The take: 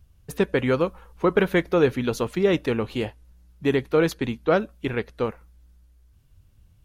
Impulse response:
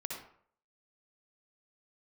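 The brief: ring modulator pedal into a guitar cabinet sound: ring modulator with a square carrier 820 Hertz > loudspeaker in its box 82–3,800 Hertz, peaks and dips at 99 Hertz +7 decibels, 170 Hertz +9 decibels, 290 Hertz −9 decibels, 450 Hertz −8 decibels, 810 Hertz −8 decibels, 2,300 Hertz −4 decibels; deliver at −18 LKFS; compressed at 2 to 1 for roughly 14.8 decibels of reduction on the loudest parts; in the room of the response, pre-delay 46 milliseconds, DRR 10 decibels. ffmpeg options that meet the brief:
-filter_complex "[0:a]acompressor=threshold=-43dB:ratio=2,asplit=2[link_01][link_02];[1:a]atrim=start_sample=2205,adelay=46[link_03];[link_02][link_03]afir=irnorm=-1:irlink=0,volume=-10.5dB[link_04];[link_01][link_04]amix=inputs=2:normalize=0,aeval=exprs='val(0)*sgn(sin(2*PI*820*n/s))':channel_layout=same,highpass=82,equalizer=frequency=99:width_type=q:width=4:gain=7,equalizer=frequency=170:width_type=q:width=4:gain=9,equalizer=frequency=290:width_type=q:width=4:gain=-9,equalizer=frequency=450:width_type=q:width=4:gain=-8,equalizer=frequency=810:width_type=q:width=4:gain=-8,equalizer=frequency=2300:width_type=q:width=4:gain=-4,lowpass=frequency=3800:width=0.5412,lowpass=frequency=3800:width=1.3066,volume=20.5dB"

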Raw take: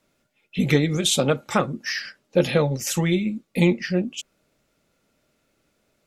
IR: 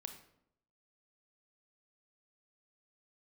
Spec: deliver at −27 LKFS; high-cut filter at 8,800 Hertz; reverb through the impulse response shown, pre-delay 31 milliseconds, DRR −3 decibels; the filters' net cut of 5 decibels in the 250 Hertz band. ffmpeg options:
-filter_complex "[0:a]lowpass=8800,equalizer=frequency=250:width_type=o:gain=-8.5,asplit=2[link_01][link_02];[1:a]atrim=start_sample=2205,adelay=31[link_03];[link_02][link_03]afir=irnorm=-1:irlink=0,volume=7dB[link_04];[link_01][link_04]amix=inputs=2:normalize=0,volume=-7dB"

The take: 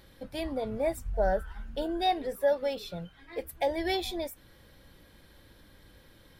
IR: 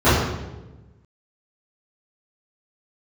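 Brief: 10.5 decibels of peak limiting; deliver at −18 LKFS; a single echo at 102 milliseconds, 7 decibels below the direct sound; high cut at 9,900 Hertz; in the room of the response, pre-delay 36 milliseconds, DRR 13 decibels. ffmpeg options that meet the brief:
-filter_complex "[0:a]lowpass=9900,alimiter=level_in=2.5dB:limit=-24dB:level=0:latency=1,volume=-2.5dB,aecho=1:1:102:0.447,asplit=2[link_01][link_02];[1:a]atrim=start_sample=2205,adelay=36[link_03];[link_02][link_03]afir=irnorm=-1:irlink=0,volume=-38.5dB[link_04];[link_01][link_04]amix=inputs=2:normalize=0,volume=17.5dB"

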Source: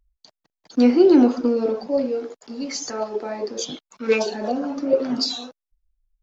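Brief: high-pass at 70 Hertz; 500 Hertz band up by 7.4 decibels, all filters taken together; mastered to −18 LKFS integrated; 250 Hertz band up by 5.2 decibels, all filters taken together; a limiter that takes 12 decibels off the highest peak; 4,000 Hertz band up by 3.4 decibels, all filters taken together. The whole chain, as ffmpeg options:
ffmpeg -i in.wav -af "highpass=70,equalizer=frequency=250:width_type=o:gain=3.5,equalizer=frequency=500:width_type=o:gain=8,equalizer=frequency=4000:width_type=o:gain=4,volume=3dB,alimiter=limit=-8dB:level=0:latency=1" out.wav

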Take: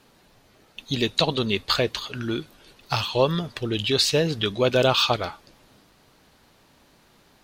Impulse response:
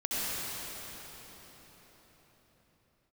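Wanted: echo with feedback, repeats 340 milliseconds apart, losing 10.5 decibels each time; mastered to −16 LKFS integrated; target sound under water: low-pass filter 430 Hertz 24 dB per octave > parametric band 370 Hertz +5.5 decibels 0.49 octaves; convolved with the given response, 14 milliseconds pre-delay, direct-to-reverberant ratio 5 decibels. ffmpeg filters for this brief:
-filter_complex "[0:a]aecho=1:1:340|680|1020:0.299|0.0896|0.0269,asplit=2[link_01][link_02];[1:a]atrim=start_sample=2205,adelay=14[link_03];[link_02][link_03]afir=irnorm=-1:irlink=0,volume=-14dB[link_04];[link_01][link_04]amix=inputs=2:normalize=0,lowpass=frequency=430:width=0.5412,lowpass=frequency=430:width=1.3066,equalizer=frequency=370:width_type=o:width=0.49:gain=5.5,volume=10dB"

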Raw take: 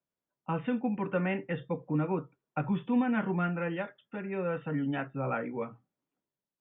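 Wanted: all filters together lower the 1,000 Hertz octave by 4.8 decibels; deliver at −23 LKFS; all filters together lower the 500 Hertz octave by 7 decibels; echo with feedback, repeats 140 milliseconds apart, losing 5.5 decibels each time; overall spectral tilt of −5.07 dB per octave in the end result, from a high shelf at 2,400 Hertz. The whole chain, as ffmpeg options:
ffmpeg -i in.wav -af "equalizer=frequency=500:width_type=o:gain=-7.5,equalizer=frequency=1000:width_type=o:gain=-5.5,highshelf=frequency=2400:gain=4.5,aecho=1:1:140|280|420|560|700|840|980:0.531|0.281|0.149|0.079|0.0419|0.0222|0.0118,volume=10.5dB" out.wav

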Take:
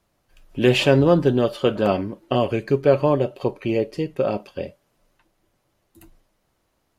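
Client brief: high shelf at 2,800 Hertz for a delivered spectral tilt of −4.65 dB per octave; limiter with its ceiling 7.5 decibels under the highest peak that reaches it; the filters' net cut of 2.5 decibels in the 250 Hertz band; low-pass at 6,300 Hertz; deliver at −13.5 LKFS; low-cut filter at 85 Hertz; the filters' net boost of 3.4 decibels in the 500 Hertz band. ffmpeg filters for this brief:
ffmpeg -i in.wav -af "highpass=85,lowpass=6300,equalizer=frequency=250:width_type=o:gain=-6,equalizer=frequency=500:width_type=o:gain=5.5,highshelf=frequency=2800:gain=3,volume=7.5dB,alimiter=limit=-1dB:level=0:latency=1" out.wav

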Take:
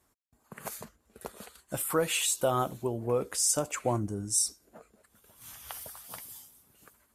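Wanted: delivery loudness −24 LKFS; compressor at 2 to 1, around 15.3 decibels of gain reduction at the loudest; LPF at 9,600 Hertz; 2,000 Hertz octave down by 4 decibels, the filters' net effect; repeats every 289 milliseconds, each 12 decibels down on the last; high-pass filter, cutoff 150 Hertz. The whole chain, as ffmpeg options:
ffmpeg -i in.wav -af "highpass=150,lowpass=9600,equalizer=frequency=2000:width_type=o:gain=-6,acompressor=threshold=-52dB:ratio=2,aecho=1:1:289|578|867:0.251|0.0628|0.0157,volume=22dB" out.wav

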